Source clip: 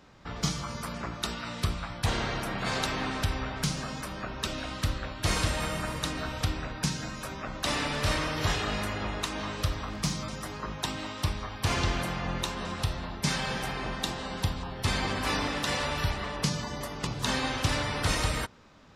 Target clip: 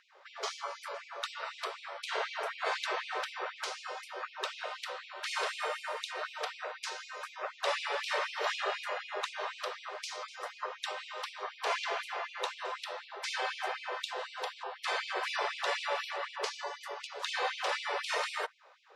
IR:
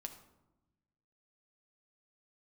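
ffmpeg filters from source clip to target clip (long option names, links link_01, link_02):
-filter_complex "[0:a]aemphasis=mode=reproduction:type=riaa,aeval=exprs='val(0)+0.0316*(sin(2*PI*60*n/s)+sin(2*PI*2*60*n/s)/2+sin(2*PI*3*60*n/s)/3+sin(2*PI*4*60*n/s)/4+sin(2*PI*5*60*n/s)/5)':channel_layout=same,afreqshift=-16,asplit=2[link_01][link_02];[1:a]atrim=start_sample=2205,asetrate=79380,aresample=44100[link_03];[link_02][link_03]afir=irnorm=-1:irlink=0,volume=-6.5dB[link_04];[link_01][link_04]amix=inputs=2:normalize=0,afftfilt=real='re*gte(b*sr/1024,360*pow(2300/360,0.5+0.5*sin(2*PI*4*pts/sr)))':imag='im*gte(b*sr/1024,360*pow(2300/360,0.5+0.5*sin(2*PI*4*pts/sr)))':win_size=1024:overlap=0.75"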